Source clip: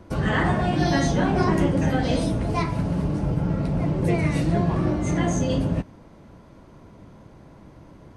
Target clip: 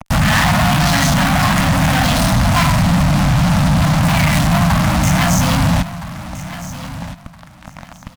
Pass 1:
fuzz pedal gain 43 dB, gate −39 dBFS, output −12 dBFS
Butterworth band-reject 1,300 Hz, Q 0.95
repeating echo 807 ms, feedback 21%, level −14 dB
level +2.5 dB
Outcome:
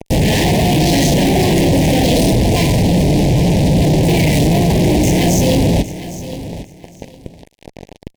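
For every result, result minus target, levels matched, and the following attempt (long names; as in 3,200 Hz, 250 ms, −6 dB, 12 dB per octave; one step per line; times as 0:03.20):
echo 509 ms early; 500 Hz band +7.0 dB
fuzz pedal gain 43 dB, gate −39 dBFS, output −12 dBFS
Butterworth band-reject 1,300 Hz, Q 0.95
repeating echo 1,316 ms, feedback 21%, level −14 dB
level +2.5 dB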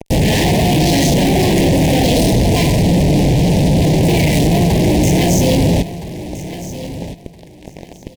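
500 Hz band +7.0 dB
fuzz pedal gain 43 dB, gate −39 dBFS, output −12 dBFS
Butterworth band-reject 400 Hz, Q 0.95
repeating echo 1,316 ms, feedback 21%, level −14 dB
level +2.5 dB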